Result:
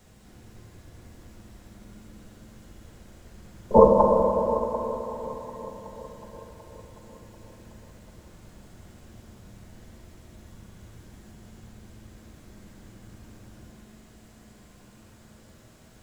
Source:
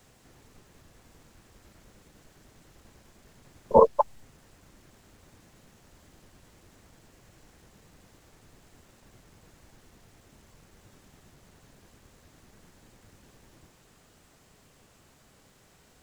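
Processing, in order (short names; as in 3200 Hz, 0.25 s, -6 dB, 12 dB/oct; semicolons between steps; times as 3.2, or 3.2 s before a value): low shelf 300 Hz +7.5 dB; multi-head echo 0.371 s, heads first and second, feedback 57%, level -18 dB; reverb RT60 3.9 s, pre-delay 5 ms, DRR -1.5 dB; gain -1 dB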